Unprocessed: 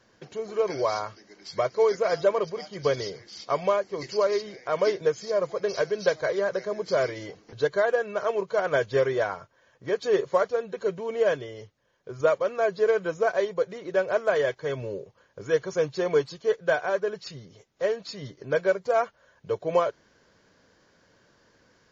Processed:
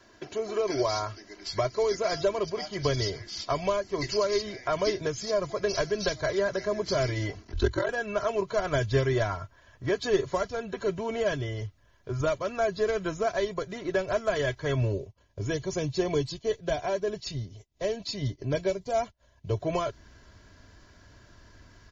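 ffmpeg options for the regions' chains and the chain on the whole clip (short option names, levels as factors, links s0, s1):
-filter_complex "[0:a]asettb=1/sr,asplit=3[s0][s1][s2];[s0]atrim=end=7.434[s3];[s1]atrim=start=7.43:end=7.89,asetpts=PTS-STARTPTS,afade=t=in:d=0.004:c=qsin,afade=t=out:st=0.456:d=0.004:c=qsin,highpass=120,aeval=exprs='val(0)*sin(2*PI*22*n/s)':c=same,afreqshift=-55[s4];[s2]atrim=start=7.886[s5];[s3][s4]acrossfade=d=0.004:c1=hsin:c2=qsin[s6];[s6][s5]acrossfade=d=0.004:c1=qsin:c2=hsin,asettb=1/sr,asplit=3[s7][s8][s9];[s7]atrim=end=14.924[s10];[s8]atrim=start=14.92:end=19.57,asetpts=PTS-STARTPTS,afade=t=in:d=0.004:c=qsin,afade=t=out:st=4.646:d=0.004:c=qsin,equalizer=f=1400:t=o:w=0.79:g=-11,acompressor=mode=upward:threshold=0.00794:ratio=2.5:attack=3.2:release=140:knee=2.83:detection=peak,agate=range=0.0224:threshold=0.00631:ratio=3:release=100:detection=peak[s11];[s9]atrim=start=19.566[s12];[s10][s11]acrossfade=d=0.004:c1=hsin:c2=qsin[s13];[s13][s12]acrossfade=d=0.004:c1=qsin:c2=hsin,asubboost=boost=6:cutoff=140,acrossover=split=330|3000[s14][s15][s16];[s15]acompressor=threshold=0.0251:ratio=6[s17];[s14][s17][s16]amix=inputs=3:normalize=0,aecho=1:1:3:0.6,volume=1.58"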